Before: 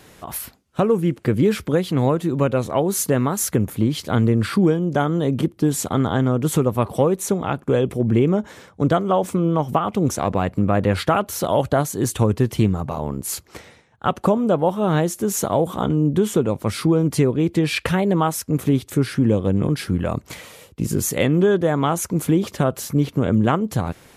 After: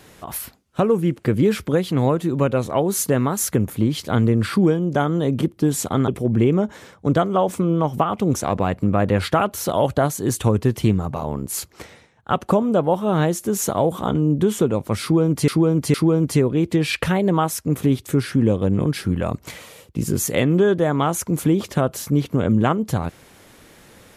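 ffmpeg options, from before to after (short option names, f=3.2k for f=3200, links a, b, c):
-filter_complex "[0:a]asplit=4[a][b][c][d];[a]atrim=end=6.082[e];[b]atrim=start=7.828:end=17.232[f];[c]atrim=start=16.768:end=17.232[g];[d]atrim=start=16.768[h];[e][f]acrossfade=d=0.004:c1=hsin:c2=hsin[i];[i][g]acrossfade=d=0.004:c1=hsin:c2=hsin[j];[j][h]acrossfade=d=0.004:c1=hsin:c2=hsin"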